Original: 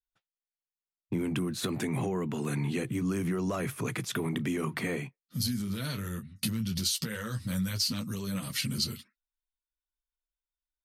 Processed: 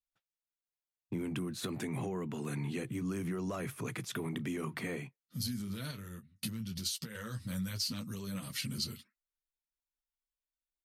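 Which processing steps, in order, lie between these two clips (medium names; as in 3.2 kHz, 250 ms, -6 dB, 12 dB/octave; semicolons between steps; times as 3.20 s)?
5.91–7.15 s: upward expansion 1.5:1, over -47 dBFS; trim -6 dB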